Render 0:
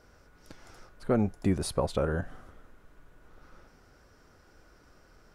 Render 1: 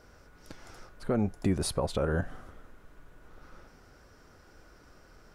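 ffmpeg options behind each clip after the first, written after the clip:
-af "alimiter=limit=-20dB:level=0:latency=1:release=144,volume=2.5dB"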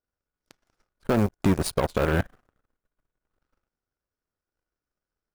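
-af "aeval=exprs='0.141*(cos(1*acos(clip(val(0)/0.141,-1,1)))-cos(1*PI/2))+0.02*(cos(7*acos(clip(val(0)/0.141,-1,1)))-cos(7*PI/2))':c=same,acrusher=bits=6:mode=log:mix=0:aa=0.000001,volume=6dB"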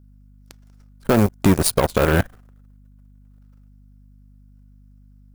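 -af "crystalizer=i=1:c=0,aeval=exprs='val(0)+0.002*(sin(2*PI*50*n/s)+sin(2*PI*2*50*n/s)/2+sin(2*PI*3*50*n/s)/3+sin(2*PI*4*50*n/s)/4+sin(2*PI*5*50*n/s)/5)':c=same,volume=6dB"

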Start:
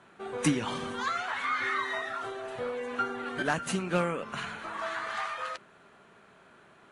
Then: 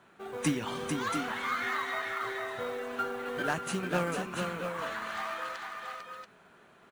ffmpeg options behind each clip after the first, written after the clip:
-filter_complex "[0:a]asplit=2[a][b];[b]aecho=0:1:447|681|685:0.531|0.299|0.299[c];[a][c]amix=inputs=2:normalize=0,acrusher=bits=6:mode=log:mix=0:aa=0.000001,volume=-3dB"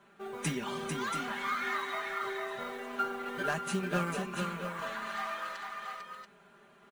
-af "aecho=1:1:5:0.75,volume=-3.5dB"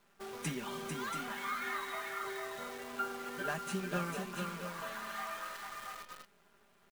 -af "acrusher=bits=8:dc=4:mix=0:aa=0.000001,volume=-4.5dB"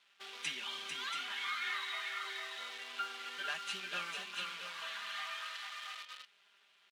-af "bandpass=f=3.2k:t=q:w=2:csg=0,volume=9.5dB"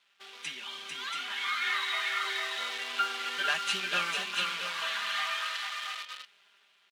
-af "dynaudnorm=f=430:g=7:m=10dB"

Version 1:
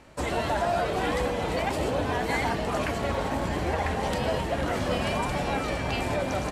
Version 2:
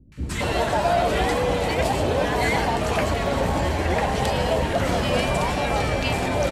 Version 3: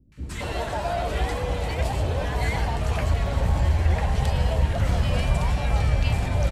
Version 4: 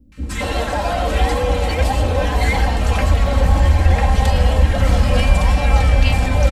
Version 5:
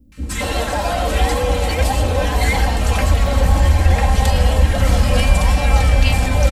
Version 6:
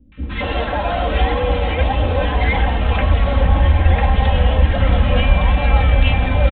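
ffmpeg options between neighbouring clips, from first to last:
-filter_complex "[0:a]acrossover=split=270|1300[a][b][c];[c]adelay=120[d];[b]adelay=230[e];[a][e][d]amix=inputs=3:normalize=0,volume=6.5dB"
-af "asubboost=boost=8:cutoff=110,volume=-6.5dB"
-af "aecho=1:1:3.8:0.67,volume=7dB"
-af "highshelf=f=6.1k:g=8.5"
-af "aresample=8000,aresample=44100"

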